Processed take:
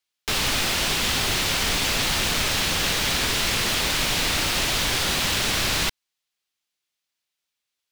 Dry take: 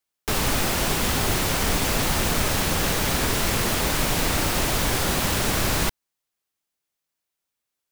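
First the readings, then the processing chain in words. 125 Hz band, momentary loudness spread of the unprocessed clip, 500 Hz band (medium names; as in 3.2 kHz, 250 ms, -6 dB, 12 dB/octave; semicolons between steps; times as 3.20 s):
-5.0 dB, 0 LU, -4.0 dB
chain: peaking EQ 3.5 kHz +11 dB 2.3 oct; trim -5 dB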